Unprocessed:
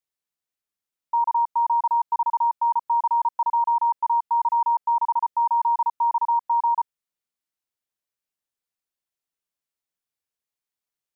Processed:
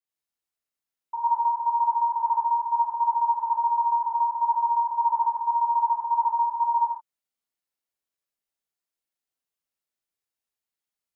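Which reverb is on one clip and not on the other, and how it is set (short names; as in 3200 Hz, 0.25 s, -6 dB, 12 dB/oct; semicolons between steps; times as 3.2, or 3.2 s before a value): non-linear reverb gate 0.2 s flat, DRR -7.5 dB; gain -9 dB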